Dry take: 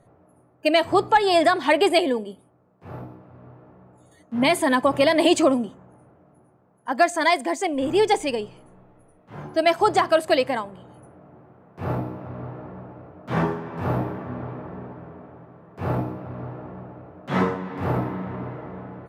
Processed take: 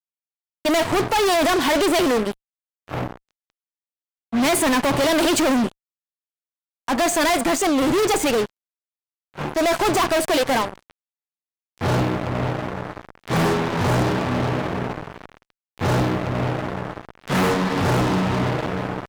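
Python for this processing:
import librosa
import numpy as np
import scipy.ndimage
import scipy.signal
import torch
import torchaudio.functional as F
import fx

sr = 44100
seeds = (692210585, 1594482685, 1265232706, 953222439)

y = fx.transient(x, sr, attack_db=-8, sustain_db=-1)
y = fx.fuzz(y, sr, gain_db=36.0, gate_db=-38.0)
y = fx.upward_expand(y, sr, threshold_db=-32.0, expansion=1.5, at=(8.37, 9.39))
y = y * librosa.db_to_amplitude(-3.5)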